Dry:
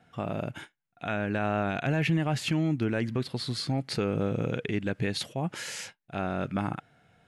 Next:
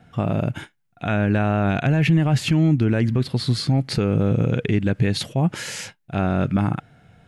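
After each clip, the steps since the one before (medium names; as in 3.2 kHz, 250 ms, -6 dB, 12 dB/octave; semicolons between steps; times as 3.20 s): bass shelf 200 Hz +11 dB; peak limiter -15.5 dBFS, peak gain reduction 4 dB; trim +6 dB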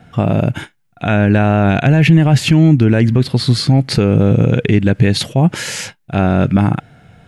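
dynamic bell 1.2 kHz, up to -4 dB, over -42 dBFS, Q 4.2; trim +8 dB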